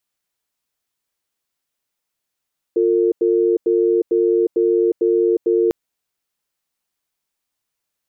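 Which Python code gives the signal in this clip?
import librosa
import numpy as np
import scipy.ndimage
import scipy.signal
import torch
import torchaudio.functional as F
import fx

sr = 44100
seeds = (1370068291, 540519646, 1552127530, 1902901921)

y = fx.cadence(sr, length_s=2.95, low_hz=352.0, high_hz=452.0, on_s=0.36, off_s=0.09, level_db=-15.5)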